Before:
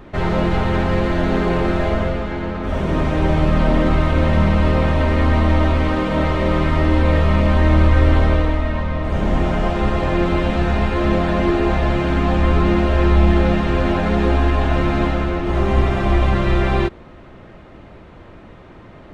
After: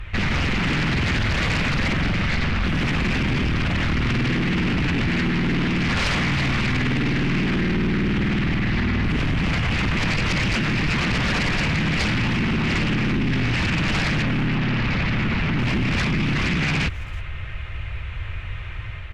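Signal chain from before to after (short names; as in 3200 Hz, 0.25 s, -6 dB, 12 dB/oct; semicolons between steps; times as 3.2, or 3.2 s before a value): 4.67–5.08 octaver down 2 oct, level -5 dB; EQ curve 100 Hz 0 dB, 250 Hz -30 dB, 400 Hz -23 dB, 770 Hz -20 dB, 2500 Hz +2 dB, 4600 Hz -10 dB; AGC gain up to 4 dB; limiter -16 dBFS, peak gain reduction 13 dB; sine folder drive 14 dB, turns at -12 dBFS; 14.22–15.59 air absorption 130 m; speakerphone echo 0.33 s, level -17 dB; gain -6 dB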